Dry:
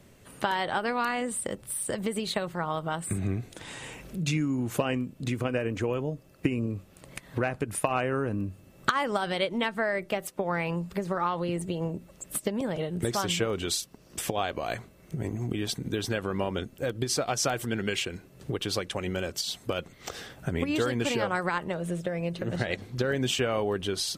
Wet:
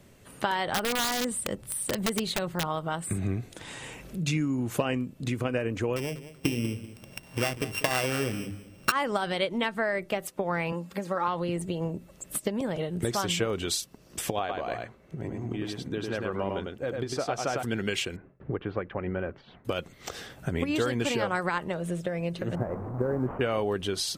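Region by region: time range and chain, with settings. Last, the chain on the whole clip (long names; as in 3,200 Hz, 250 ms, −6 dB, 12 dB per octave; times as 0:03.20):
0:00.67–0:02.67: low-shelf EQ 310 Hz +4 dB + wrap-around overflow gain 19.5 dB
0:05.96–0:08.92: samples sorted by size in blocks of 16 samples + mains-hum notches 50/100/150/200/250/300/350/400/450 Hz + repeating echo 194 ms, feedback 26%, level −14 dB
0:10.72–0:11.28: Bessel high-pass filter 170 Hz + comb filter 3.7 ms, depth 43%
0:14.39–0:17.63: low-pass filter 1,700 Hz 6 dB per octave + low-shelf EQ 230 Hz −6.5 dB + single-tap delay 102 ms −3.5 dB
0:18.16–0:19.65: low-pass filter 1,900 Hz 24 dB per octave + noise gate with hold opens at −43 dBFS, closes at −49 dBFS
0:22.55–0:23.41: linear delta modulator 16 kbit/s, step −29 dBFS + low-pass filter 1,100 Hz 24 dB per octave + floating-point word with a short mantissa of 6 bits
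whole clip: no processing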